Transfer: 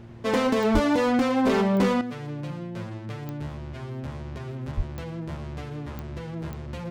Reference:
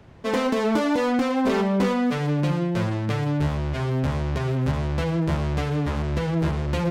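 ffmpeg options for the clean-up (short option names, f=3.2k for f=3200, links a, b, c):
-filter_complex "[0:a]adeclick=t=4,bandreject=f=115.8:t=h:w=4,bandreject=f=231.6:t=h:w=4,bandreject=f=347.4:t=h:w=4,asplit=3[a][b][c];[a]afade=t=out:st=0.73:d=0.02[d];[b]highpass=f=140:w=0.5412,highpass=f=140:w=1.3066,afade=t=in:st=0.73:d=0.02,afade=t=out:st=0.85:d=0.02[e];[c]afade=t=in:st=0.85:d=0.02[f];[d][e][f]amix=inputs=3:normalize=0,asplit=3[g][h][i];[g]afade=t=out:st=4.76:d=0.02[j];[h]highpass=f=140:w=0.5412,highpass=f=140:w=1.3066,afade=t=in:st=4.76:d=0.02,afade=t=out:st=4.88:d=0.02[k];[i]afade=t=in:st=4.88:d=0.02[l];[j][k][l]amix=inputs=3:normalize=0,asetnsamples=n=441:p=0,asendcmd='2.01 volume volume 11dB',volume=0dB"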